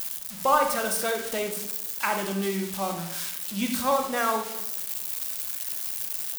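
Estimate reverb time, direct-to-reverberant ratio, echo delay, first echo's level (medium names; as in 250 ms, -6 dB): 0.85 s, 5.0 dB, no echo, no echo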